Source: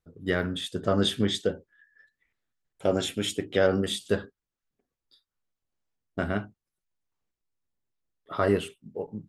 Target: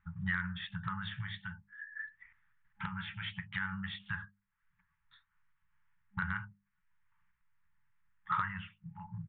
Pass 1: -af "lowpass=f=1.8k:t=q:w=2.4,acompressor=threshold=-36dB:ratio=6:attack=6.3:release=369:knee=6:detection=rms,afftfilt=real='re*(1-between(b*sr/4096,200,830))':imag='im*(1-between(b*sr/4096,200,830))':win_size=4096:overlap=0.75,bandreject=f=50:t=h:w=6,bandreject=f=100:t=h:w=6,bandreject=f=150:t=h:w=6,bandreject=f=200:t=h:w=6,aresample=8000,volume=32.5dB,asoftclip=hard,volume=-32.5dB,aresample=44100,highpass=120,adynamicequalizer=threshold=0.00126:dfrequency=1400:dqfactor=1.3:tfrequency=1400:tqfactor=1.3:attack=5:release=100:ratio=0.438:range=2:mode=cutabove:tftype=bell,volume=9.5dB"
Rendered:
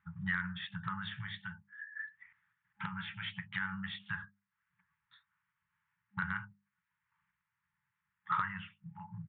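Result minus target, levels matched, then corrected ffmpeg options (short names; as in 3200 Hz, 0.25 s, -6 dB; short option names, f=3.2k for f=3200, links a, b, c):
125 Hz band -2.5 dB
-af "lowpass=f=1.8k:t=q:w=2.4,acompressor=threshold=-36dB:ratio=6:attack=6.3:release=369:knee=6:detection=rms,afftfilt=real='re*(1-between(b*sr/4096,200,830))':imag='im*(1-between(b*sr/4096,200,830))':win_size=4096:overlap=0.75,bandreject=f=50:t=h:w=6,bandreject=f=100:t=h:w=6,bandreject=f=150:t=h:w=6,bandreject=f=200:t=h:w=6,aresample=8000,volume=32.5dB,asoftclip=hard,volume=-32.5dB,aresample=44100,adynamicequalizer=threshold=0.00126:dfrequency=1400:dqfactor=1.3:tfrequency=1400:tqfactor=1.3:attack=5:release=100:ratio=0.438:range=2:mode=cutabove:tftype=bell,volume=9.5dB"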